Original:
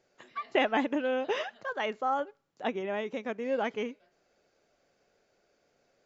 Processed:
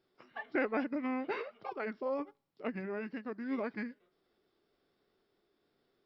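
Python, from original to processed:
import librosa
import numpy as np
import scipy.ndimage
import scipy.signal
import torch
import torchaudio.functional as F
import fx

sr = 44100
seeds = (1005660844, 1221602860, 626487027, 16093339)

y = fx.formant_shift(x, sr, semitones=-5)
y = y * librosa.db_to_amplitude(-5.5)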